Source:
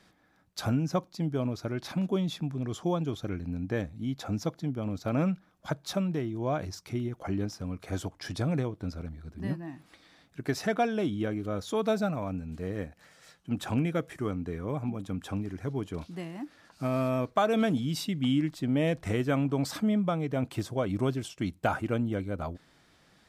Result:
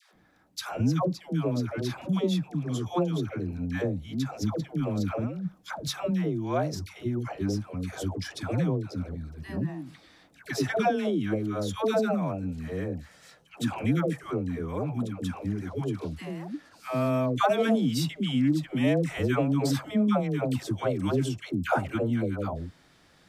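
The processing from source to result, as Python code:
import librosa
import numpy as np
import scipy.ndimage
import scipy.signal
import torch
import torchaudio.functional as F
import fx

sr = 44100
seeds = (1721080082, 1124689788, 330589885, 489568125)

y = fx.over_compress(x, sr, threshold_db=-30.0, ratio=-0.5, at=(4.47, 5.97))
y = fx.dispersion(y, sr, late='lows', ms=142.0, hz=620.0)
y = y * librosa.db_to_amplitude(2.5)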